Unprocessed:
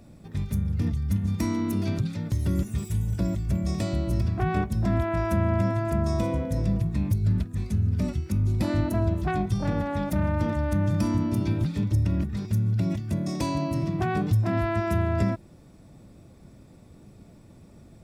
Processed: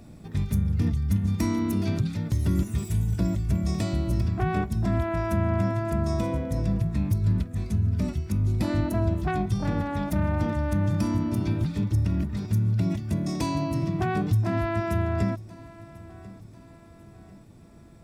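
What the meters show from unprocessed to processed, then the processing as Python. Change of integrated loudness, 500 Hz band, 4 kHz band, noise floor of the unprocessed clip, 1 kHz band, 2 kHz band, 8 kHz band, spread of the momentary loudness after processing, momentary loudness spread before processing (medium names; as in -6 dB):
0.0 dB, -1.0 dB, +0.5 dB, -51 dBFS, -0.5 dB, 0.0 dB, +0.5 dB, 4 LU, 4 LU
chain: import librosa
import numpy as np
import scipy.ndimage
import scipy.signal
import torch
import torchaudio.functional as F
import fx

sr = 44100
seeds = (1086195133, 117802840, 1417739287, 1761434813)

p1 = fx.notch(x, sr, hz=550.0, q=12.0)
p2 = fx.rider(p1, sr, range_db=4, speed_s=2.0)
y = p2 + fx.echo_feedback(p2, sr, ms=1043, feedback_pct=45, wet_db=-20, dry=0)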